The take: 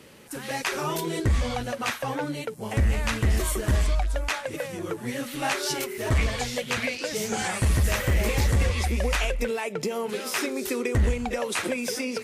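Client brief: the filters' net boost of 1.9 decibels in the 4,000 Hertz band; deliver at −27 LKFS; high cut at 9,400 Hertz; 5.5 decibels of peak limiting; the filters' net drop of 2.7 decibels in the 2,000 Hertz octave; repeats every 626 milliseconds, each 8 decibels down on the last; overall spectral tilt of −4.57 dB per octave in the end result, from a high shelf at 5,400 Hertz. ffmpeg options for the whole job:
ffmpeg -i in.wav -af "lowpass=9400,equalizer=frequency=2000:width_type=o:gain=-4.5,equalizer=frequency=4000:width_type=o:gain=5.5,highshelf=frequency=5400:gain=-3.5,alimiter=limit=-20dB:level=0:latency=1,aecho=1:1:626|1252|1878|2504|3130:0.398|0.159|0.0637|0.0255|0.0102,volume=2dB" out.wav

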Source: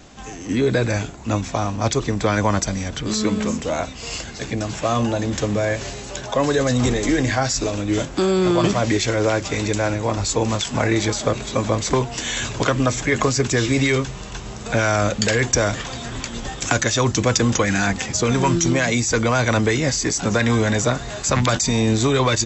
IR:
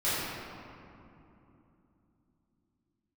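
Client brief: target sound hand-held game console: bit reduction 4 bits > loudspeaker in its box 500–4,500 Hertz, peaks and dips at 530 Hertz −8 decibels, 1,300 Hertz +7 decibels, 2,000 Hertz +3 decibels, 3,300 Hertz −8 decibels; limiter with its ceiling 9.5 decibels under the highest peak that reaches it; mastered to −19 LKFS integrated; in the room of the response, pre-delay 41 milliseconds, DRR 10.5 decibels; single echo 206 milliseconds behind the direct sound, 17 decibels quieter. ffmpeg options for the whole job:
-filter_complex "[0:a]alimiter=limit=-14dB:level=0:latency=1,aecho=1:1:206:0.141,asplit=2[link_01][link_02];[1:a]atrim=start_sample=2205,adelay=41[link_03];[link_02][link_03]afir=irnorm=-1:irlink=0,volume=-22dB[link_04];[link_01][link_04]amix=inputs=2:normalize=0,acrusher=bits=3:mix=0:aa=0.000001,highpass=500,equalizer=frequency=530:width_type=q:width=4:gain=-8,equalizer=frequency=1300:width_type=q:width=4:gain=7,equalizer=frequency=2000:width_type=q:width=4:gain=3,equalizer=frequency=3300:width_type=q:width=4:gain=-8,lowpass=frequency=4500:width=0.5412,lowpass=frequency=4500:width=1.3066,volume=6.5dB"

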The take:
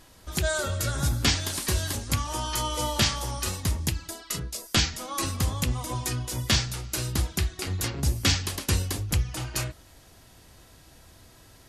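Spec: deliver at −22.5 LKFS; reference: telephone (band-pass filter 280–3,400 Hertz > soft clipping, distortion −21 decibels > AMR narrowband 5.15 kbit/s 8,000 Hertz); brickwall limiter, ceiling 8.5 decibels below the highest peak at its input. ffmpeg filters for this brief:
ffmpeg -i in.wav -af "alimiter=limit=-19.5dB:level=0:latency=1,highpass=280,lowpass=3400,asoftclip=threshold=-25dB,volume=19dB" -ar 8000 -c:a libopencore_amrnb -b:a 5150 out.amr

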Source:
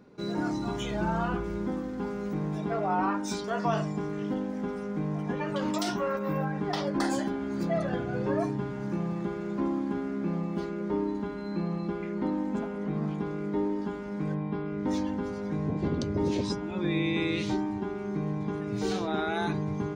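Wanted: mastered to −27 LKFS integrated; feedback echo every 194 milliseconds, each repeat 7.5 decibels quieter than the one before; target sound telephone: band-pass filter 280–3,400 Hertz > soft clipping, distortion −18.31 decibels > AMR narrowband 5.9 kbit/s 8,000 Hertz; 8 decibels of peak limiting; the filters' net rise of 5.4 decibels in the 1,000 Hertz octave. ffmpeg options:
ffmpeg -i in.wav -af "equalizer=frequency=1000:width_type=o:gain=7,alimiter=limit=-20.5dB:level=0:latency=1,highpass=280,lowpass=3400,aecho=1:1:194|388|582|776|970:0.422|0.177|0.0744|0.0312|0.0131,asoftclip=threshold=-24.5dB,volume=8.5dB" -ar 8000 -c:a libopencore_amrnb -b:a 5900 out.amr

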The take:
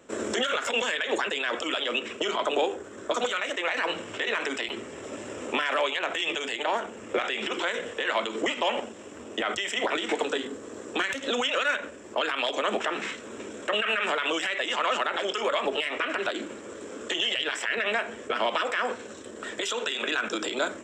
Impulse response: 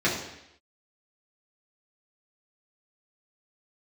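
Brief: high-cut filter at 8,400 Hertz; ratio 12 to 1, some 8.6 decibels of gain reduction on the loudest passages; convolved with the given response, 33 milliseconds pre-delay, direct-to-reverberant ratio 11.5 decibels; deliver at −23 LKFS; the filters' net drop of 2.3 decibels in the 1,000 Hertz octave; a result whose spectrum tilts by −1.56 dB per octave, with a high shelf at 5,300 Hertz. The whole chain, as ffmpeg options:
-filter_complex "[0:a]lowpass=8400,equalizer=frequency=1000:width_type=o:gain=-3.5,highshelf=frequency=5300:gain=7,acompressor=threshold=-31dB:ratio=12,asplit=2[link_01][link_02];[1:a]atrim=start_sample=2205,adelay=33[link_03];[link_02][link_03]afir=irnorm=-1:irlink=0,volume=-26dB[link_04];[link_01][link_04]amix=inputs=2:normalize=0,volume=12dB"

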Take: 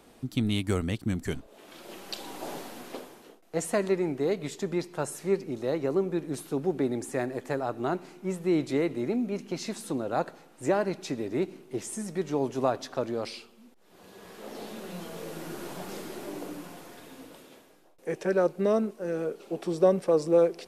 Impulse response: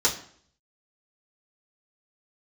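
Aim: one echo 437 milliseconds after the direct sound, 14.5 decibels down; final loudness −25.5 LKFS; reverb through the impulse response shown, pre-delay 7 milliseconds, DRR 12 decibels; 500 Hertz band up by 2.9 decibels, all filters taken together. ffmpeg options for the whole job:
-filter_complex "[0:a]equalizer=frequency=500:width_type=o:gain=3.5,aecho=1:1:437:0.188,asplit=2[link_01][link_02];[1:a]atrim=start_sample=2205,adelay=7[link_03];[link_02][link_03]afir=irnorm=-1:irlink=0,volume=-24.5dB[link_04];[link_01][link_04]amix=inputs=2:normalize=0,volume=2.5dB"

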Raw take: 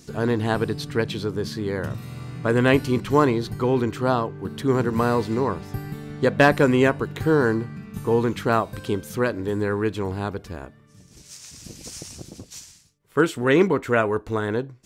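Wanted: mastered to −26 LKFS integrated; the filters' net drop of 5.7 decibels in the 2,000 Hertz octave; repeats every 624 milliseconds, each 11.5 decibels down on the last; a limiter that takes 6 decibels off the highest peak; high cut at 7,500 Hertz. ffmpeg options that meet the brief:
ffmpeg -i in.wav -af "lowpass=7500,equalizer=frequency=2000:width_type=o:gain=-8,alimiter=limit=-11.5dB:level=0:latency=1,aecho=1:1:624|1248|1872:0.266|0.0718|0.0194,volume=-1.5dB" out.wav

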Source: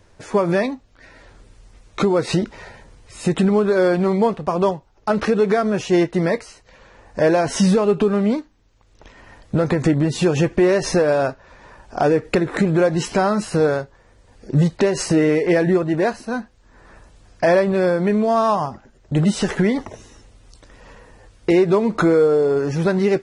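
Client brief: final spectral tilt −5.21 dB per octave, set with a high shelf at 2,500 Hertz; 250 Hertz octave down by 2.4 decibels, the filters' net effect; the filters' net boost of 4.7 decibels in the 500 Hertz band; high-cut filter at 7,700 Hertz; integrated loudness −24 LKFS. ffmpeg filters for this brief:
ffmpeg -i in.wav -af "lowpass=7700,equalizer=frequency=250:width_type=o:gain=-8,equalizer=frequency=500:width_type=o:gain=8,highshelf=frequency=2500:gain=3.5,volume=-8dB" out.wav

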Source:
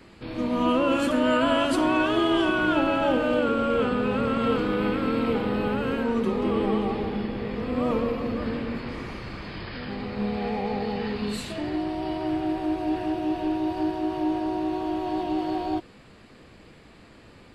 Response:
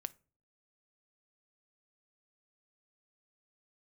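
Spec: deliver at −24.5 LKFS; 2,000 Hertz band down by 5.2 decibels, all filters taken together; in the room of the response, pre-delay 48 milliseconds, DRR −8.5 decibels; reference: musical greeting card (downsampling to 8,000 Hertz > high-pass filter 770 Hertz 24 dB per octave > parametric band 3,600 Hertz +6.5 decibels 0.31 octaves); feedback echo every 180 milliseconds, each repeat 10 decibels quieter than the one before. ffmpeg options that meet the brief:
-filter_complex "[0:a]equalizer=frequency=2000:width_type=o:gain=-8.5,aecho=1:1:180|360|540|720:0.316|0.101|0.0324|0.0104,asplit=2[link_01][link_02];[1:a]atrim=start_sample=2205,adelay=48[link_03];[link_02][link_03]afir=irnorm=-1:irlink=0,volume=11dB[link_04];[link_01][link_04]amix=inputs=2:normalize=0,aresample=8000,aresample=44100,highpass=frequency=770:width=0.5412,highpass=frequency=770:width=1.3066,equalizer=frequency=3600:width_type=o:width=0.31:gain=6.5,volume=1dB"

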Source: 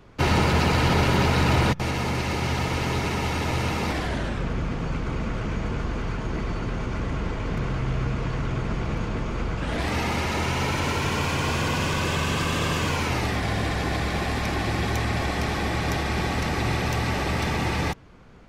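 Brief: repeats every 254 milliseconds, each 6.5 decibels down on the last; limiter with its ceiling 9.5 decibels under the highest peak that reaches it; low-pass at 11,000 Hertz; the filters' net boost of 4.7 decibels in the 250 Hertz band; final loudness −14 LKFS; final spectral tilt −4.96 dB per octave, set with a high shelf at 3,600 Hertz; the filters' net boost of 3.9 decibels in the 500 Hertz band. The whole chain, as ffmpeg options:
ffmpeg -i in.wav -af "lowpass=11000,equalizer=frequency=250:width_type=o:gain=5.5,equalizer=frequency=500:width_type=o:gain=3,highshelf=frequency=3600:gain=7,alimiter=limit=-15dB:level=0:latency=1,aecho=1:1:254|508|762|1016|1270|1524:0.473|0.222|0.105|0.0491|0.0231|0.0109,volume=10dB" out.wav

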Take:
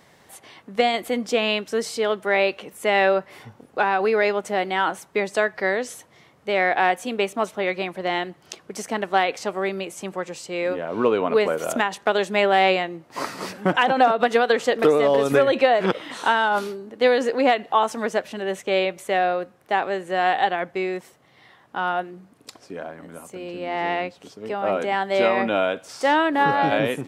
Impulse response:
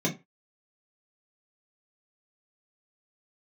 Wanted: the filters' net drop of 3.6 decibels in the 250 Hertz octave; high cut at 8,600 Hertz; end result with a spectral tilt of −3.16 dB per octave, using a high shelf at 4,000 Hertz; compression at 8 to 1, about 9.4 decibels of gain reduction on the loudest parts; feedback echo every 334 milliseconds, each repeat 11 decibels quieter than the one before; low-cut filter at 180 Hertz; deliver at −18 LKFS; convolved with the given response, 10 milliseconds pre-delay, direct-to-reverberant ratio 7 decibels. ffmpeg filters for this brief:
-filter_complex "[0:a]highpass=180,lowpass=8600,equalizer=frequency=250:width_type=o:gain=-3.5,highshelf=frequency=4000:gain=-3.5,acompressor=threshold=-23dB:ratio=8,aecho=1:1:334|668|1002:0.282|0.0789|0.0221,asplit=2[link_01][link_02];[1:a]atrim=start_sample=2205,adelay=10[link_03];[link_02][link_03]afir=irnorm=-1:irlink=0,volume=-16dB[link_04];[link_01][link_04]amix=inputs=2:normalize=0,volume=9.5dB"

